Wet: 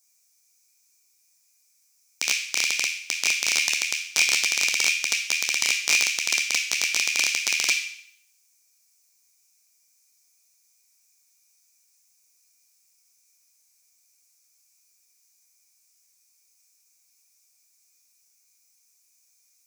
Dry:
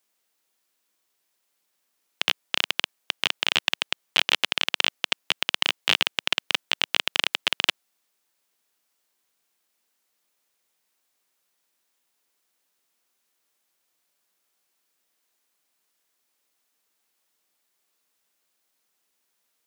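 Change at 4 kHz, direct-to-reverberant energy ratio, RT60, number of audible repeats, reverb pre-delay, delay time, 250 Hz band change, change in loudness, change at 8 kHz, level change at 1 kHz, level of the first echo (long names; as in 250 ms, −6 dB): −2.0 dB, −12.5 dB, 0.65 s, no echo audible, 11 ms, no echo audible, −6.5 dB, +2.5 dB, +15.0 dB, −7.0 dB, no echo audible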